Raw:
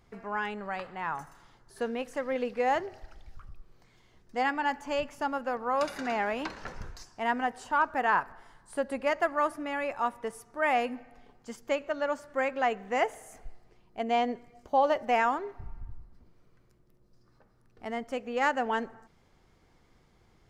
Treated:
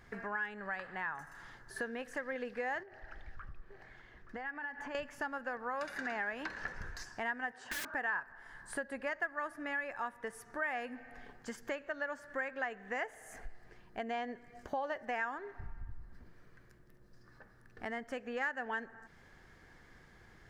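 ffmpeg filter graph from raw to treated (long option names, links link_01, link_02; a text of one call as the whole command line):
ffmpeg -i in.wav -filter_complex "[0:a]asettb=1/sr,asplit=3[link_01][link_02][link_03];[link_01]atrim=end=2.834[link_04];[link_02]atrim=start=2.83:end=4.95,asetpts=PTS-STARTPTS,afade=type=in:duration=0.004:curve=qsin,afade=type=out:start_time=2.116:duration=0.004:curve=qsin,bass=frequency=250:gain=-3,treble=frequency=4000:gain=-12,acompressor=threshold=-42dB:ratio=6:attack=3.2:release=140:knee=1:detection=peak,aecho=1:1:874:0.2,atrim=end_sample=93492[link_05];[link_03]atrim=start=4.946[link_06];[link_04][link_05]acrossfade=duration=0.004:curve1=hsin:curve2=qsin[link_07];[link_07][link_06]acrossfade=duration=0.004:curve1=qsin:curve2=hsin,asettb=1/sr,asplit=3[link_08][link_09][link_10];[link_08]atrim=end=7.534[link_11];[link_09]atrim=start=7.53:end=7.94,asetpts=PTS-STARTPTS,afade=type=in:duration=0.004:curve=qsin,afade=type=out:start_time=0.406:duration=0.004:curve=qsin,highpass=130,lowpass=6600,aeval=exprs='(mod(31.6*val(0)+1,2)-1)/31.6':channel_layout=same[link_12];[link_10]atrim=start=7.936[link_13];[link_11][link_12]acrossfade=duration=0.004:curve1=hsin:curve2=qsin[link_14];[link_14][link_13]acrossfade=duration=0.004:curve1=qsin:curve2=hsin,equalizer=frequency=1700:width_type=o:width=0.38:gain=15,acompressor=threshold=-43dB:ratio=3,volume=2.5dB" out.wav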